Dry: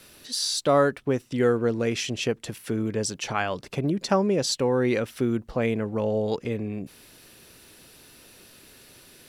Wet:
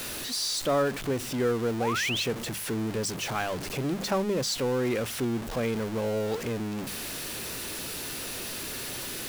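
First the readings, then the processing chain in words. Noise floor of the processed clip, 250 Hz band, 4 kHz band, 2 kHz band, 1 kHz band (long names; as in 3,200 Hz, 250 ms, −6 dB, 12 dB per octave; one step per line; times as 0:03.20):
−36 dBFS, −3.5 dB, 0.0 dB, 0.0 dB, −3.0 dB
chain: converter with a step at zero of −23.5 dBFS
sound drawn into the spectrogram rise, 0:01.80–0:02.23, 680–4,500 Hz −24 dBFS
mains-hum notches 50/100/150/200 Hz
level −7 dB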